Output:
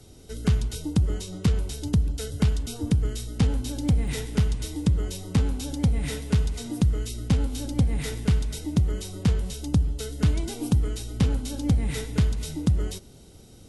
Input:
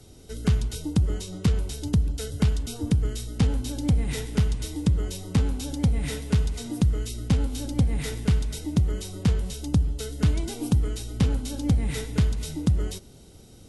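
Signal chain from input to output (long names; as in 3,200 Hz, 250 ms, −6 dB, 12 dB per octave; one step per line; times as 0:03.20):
0:03.60–0:04.26: surface crackle 28 per second −38 dBFS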